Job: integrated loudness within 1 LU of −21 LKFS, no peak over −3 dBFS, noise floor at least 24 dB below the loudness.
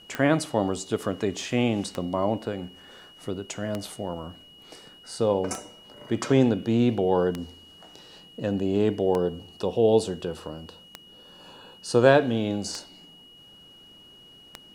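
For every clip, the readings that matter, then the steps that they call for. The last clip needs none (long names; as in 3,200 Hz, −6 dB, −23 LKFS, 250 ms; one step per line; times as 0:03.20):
number of clicks 9; interfering tone 2,900 Hz; level of the tone −49 dBFS; integrated loudness −25.5 LKFS; sample peak −4.5 dBFS; target loudness −21.0 LKFS
→ click removal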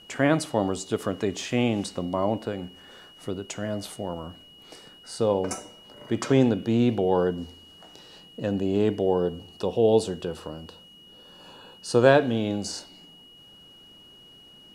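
number of clicks 0; interfering tone 2,900 Hz; level of the tone −49 dBFS
→ notch filter 2,900 Hz, Q 30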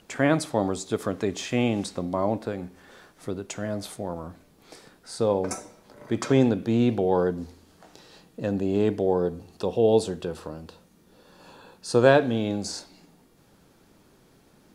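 interfering tone none found; integrated loudness −25.5 LKFS; sample peak −4.5 dBFS; target loudness −21.0 LKFS
→ level +4.5 dB
brickwall limiter −3 dBFS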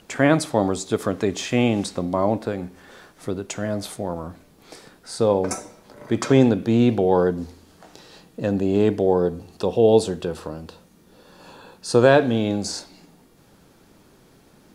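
integrated loudness −21.5 LKFS; sample peak −3.0 dBFS; background noise floor −54 dBFS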